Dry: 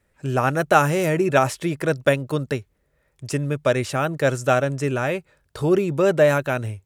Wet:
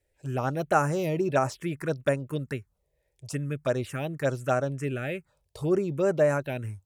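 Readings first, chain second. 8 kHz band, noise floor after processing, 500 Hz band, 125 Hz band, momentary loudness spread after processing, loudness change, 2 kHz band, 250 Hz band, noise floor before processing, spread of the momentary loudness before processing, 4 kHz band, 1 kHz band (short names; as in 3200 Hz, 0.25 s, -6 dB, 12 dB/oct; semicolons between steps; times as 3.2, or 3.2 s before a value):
-9.0 dB, -76 dBFS, -7.0 dB, -6.0 dB, 10 LU, -7.0 dB, -10.0 dB, -6.5 dB, -68 dBFS, 9 LU, -10.5 dB, -8.0 dB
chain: envelope phaser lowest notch 200 Hz, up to 3500 Hz, full sweep at -14 dBFS; gain -6 dB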